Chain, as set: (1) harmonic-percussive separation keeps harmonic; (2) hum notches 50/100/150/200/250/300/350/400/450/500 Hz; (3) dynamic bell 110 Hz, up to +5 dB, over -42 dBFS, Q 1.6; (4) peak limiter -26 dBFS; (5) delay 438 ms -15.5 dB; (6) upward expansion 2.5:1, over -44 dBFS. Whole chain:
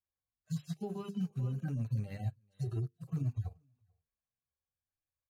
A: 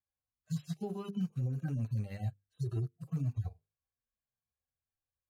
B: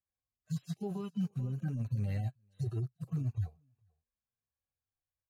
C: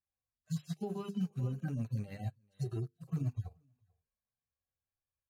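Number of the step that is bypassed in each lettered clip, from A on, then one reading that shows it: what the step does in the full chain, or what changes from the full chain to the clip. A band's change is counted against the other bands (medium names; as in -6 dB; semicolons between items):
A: 5, crest factor change -1.5 dB; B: 2, loudness change +1.0 LU; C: 3, 125 Hz band -2.5 dB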